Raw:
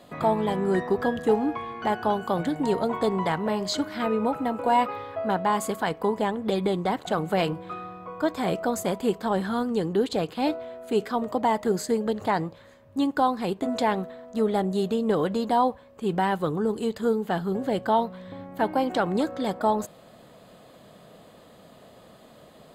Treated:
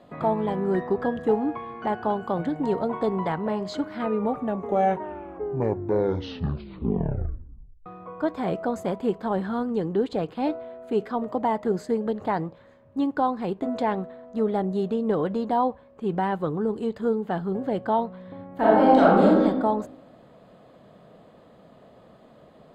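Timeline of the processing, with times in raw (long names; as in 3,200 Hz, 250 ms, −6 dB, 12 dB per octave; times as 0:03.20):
0:04.06: tape stop 3.80 s
0:18.56–0:19.42: thrown reverb, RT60 1 s, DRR −8.5 dB
whole clip: low-pass filter 1,400 Hz 6 dB per octave; mains-hum notches 50/100 Hz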